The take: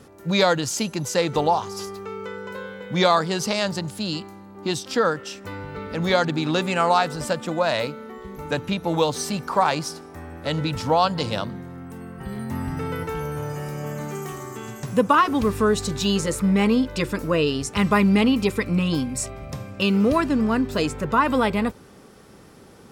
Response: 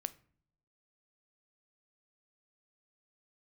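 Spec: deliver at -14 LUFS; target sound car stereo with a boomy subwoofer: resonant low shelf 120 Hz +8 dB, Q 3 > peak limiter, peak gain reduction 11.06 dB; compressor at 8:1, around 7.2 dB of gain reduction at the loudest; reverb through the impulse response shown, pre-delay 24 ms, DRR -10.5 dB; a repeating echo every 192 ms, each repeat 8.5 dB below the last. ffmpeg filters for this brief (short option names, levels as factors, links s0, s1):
-filter_complex "[0:a]acompressor=threshold=0.1:ratio=8,aecho=1:1:192|384|576|768:0.376|0.143|0.0543|0.0206,asplit=2[s0][s1];[1:a]atrim=start_sample=2205,adelay=24[s2];[s1][s2]afir=irnorm=-1:irlink=0,volume=3.98[s3];[s0][s3]amix=inputs=2:normalize=0,lowshelf=f=120:t=q:w=3:g=8,volume=1.88,alimiter=limit=0.596:level=0:latency=1"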